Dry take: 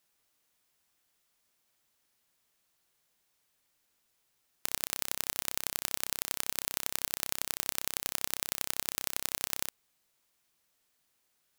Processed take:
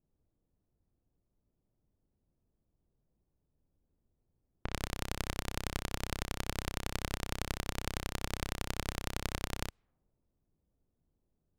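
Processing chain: level-controlled noise filter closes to 390 Hz, open at -46.5 dBFS; RIAA curve playback; trim +1.5 dB

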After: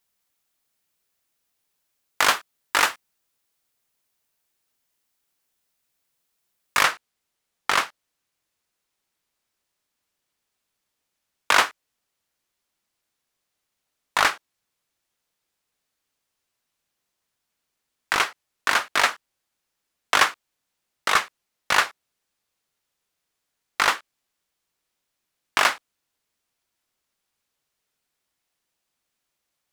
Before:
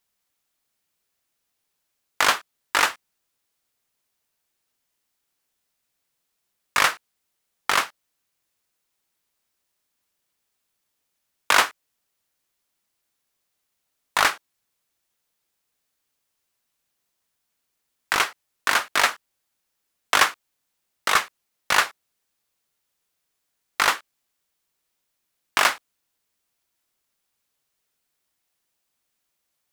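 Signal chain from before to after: treble shelf 10 kHz +2.5 dB, from 6.83 s -7 dB

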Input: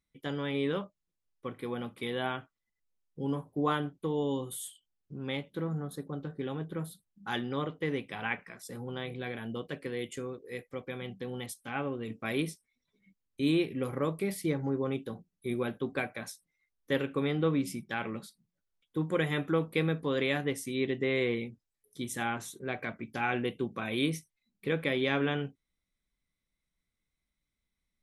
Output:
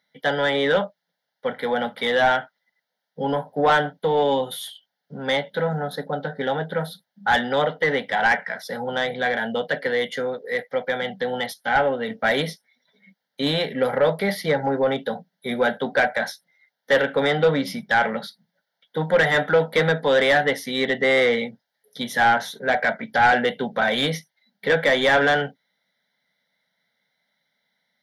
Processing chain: high-pass 160 Hz 24 dB/octave; static phaser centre 1.7 kHz, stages 8; overdrive pedal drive 22 dB, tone 1.7 kHz, clips at -14.5 dBFS; trim +9 dB

